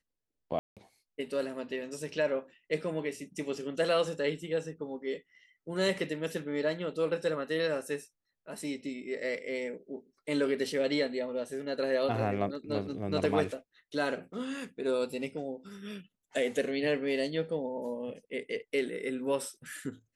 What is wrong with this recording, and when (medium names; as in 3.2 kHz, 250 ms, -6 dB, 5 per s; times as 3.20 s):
0.59–0.77 s: dropout 177 ms